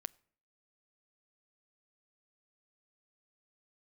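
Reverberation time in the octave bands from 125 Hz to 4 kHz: 0.60, 0.65, 0.60, 0.55, 0.50, 0.40 s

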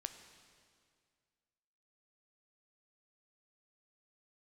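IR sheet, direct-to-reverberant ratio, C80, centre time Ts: 8.0 dB, 10.0 dB, 22 ms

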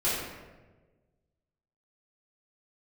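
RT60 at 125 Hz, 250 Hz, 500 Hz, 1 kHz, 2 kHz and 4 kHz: 1.8, 1.5, 1.5, 1.1, 1.0, 0.75 s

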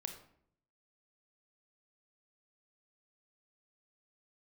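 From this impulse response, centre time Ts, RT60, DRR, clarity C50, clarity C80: 16 ms, 0.65 s, 5.5 dB, 8.0 dB, 11.5 dB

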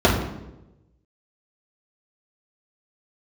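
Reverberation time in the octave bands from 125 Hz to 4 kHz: 1.3, 1.1, 1.1, 0.85, 0.75, 0.65 s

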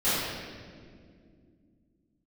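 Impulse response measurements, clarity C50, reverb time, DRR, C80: -3.5 dB, not exponential, -17.0 dB, -0.5 dB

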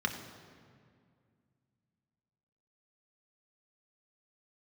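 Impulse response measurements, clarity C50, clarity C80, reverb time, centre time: 8.0 dB, 9.0 dB, 2.2 s, 29 ms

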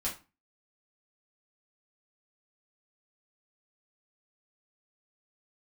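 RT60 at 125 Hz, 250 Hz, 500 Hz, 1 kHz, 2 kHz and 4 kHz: 0.40, 0.35, 0.30, 0.30, 0.30, 0.25 s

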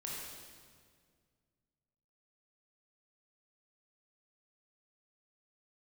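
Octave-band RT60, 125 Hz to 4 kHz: 2.7, 2.4, 2.1, 1.8, 1.7, 1.6 s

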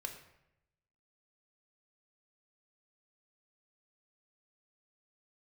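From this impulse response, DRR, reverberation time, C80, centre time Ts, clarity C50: 3.5 dB, 0.85 s, 10.5 dB, 19 ms, 8.5 dB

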